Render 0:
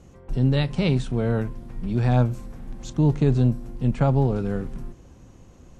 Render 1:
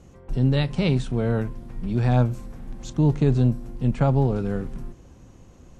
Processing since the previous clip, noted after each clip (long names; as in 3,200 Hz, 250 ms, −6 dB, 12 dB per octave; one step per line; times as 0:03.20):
no processing that can be heard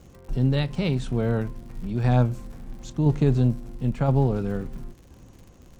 shaped tremolo saw down 0.98 Hz, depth 35%
surface crackle 120 per second −42 dBFS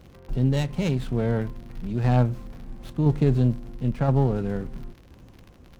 windowed peak hold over 5 samples